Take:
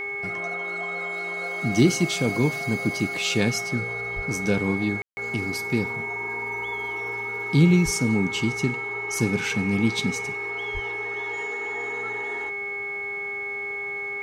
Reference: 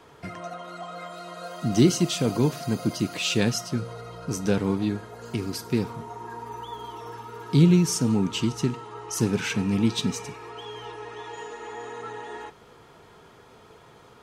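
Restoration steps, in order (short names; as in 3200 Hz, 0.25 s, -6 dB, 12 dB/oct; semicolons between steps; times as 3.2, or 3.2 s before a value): de-hum 404 Hz, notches 6; notch 2200 Hz, Q 30; 4.15–4.27 HPF 140 Hz 24 dB/oct; 7.84–7.96 HPF 140 Hz 24 dB/oct; 10.73–10.85 HPF 140 Hz 24 dB/oct; room tone fill 5.02–5.17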